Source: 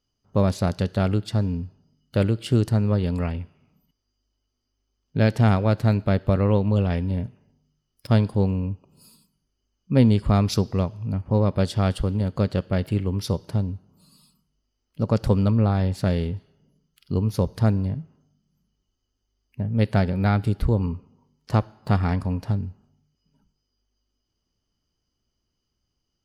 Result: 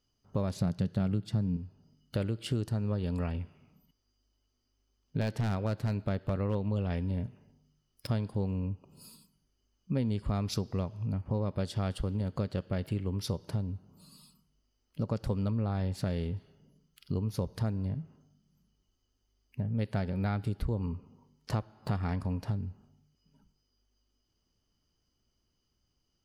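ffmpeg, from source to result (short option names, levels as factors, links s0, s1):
-filter_complex "[0:a]asettb=1/sr,asplit=3[s0][s1][s2];[s0]atrim=end=0.564[s3];[s1]atrim=start=0.56:end=1.57,asetpts=PTS-STARTPTS,afade=t=in:d=0.004:c=qsin,afade=t=out:st=1.006:d=0.004:c=qsin,equalizer=f=160:w=1.1:g=12[s4];[s2]atrim=start=1.566[s5];[s3][s4]acrossfade=d=0.004:c1=hsin:c2=qsin[s6];[s6][s5]acrossfade=d=0.004:c1=qsin:c2=hsin,asettb=1/sr,asplit=3[s7][s8][s9];[s7]atrim=end=2.624[s10];[s8]atrim=start=2.62:end=3.39,asetpts=PTS-STARTPTS,afade=t=in:d=0.004:c=qsin,afade=t=out:st=0.766:d=0.004:c=qsin,bandreject=f=2100:w=12[s11];[s9]atrim=start=3.386[s12];[s10][s11]acrossfade=d=0.004:c1=hsin:c2=qsin[s13];[s13][s12]acrossfade=d=0.004:c1=qsin:c2=hsin,asettb=1/sr,asplit=3[s14][s15][s16];[s14]atrim=end=5.214[s17];[s15]atrim=start=5.21:end=6.55,asetpts=PTS-STARTPTS,afade=t=in:d=0.004:c=qsin,afade=t=out:st=1.336:d=0.004:c=qsin,aeval=exprs='0.251*(abs(mod(val(0)/0.251+3,4)-2)-1)':c=same[s18];[s16]atrim=start=6.546[s19];[s17][s18]acrossfade=d=0.004:c1=hsin:c2=qsin[s20];[s20][s19]acrossfade=d=0.004:c1=qsin:c2=hsin,acompressor=threshold=0.0251:ratio=3"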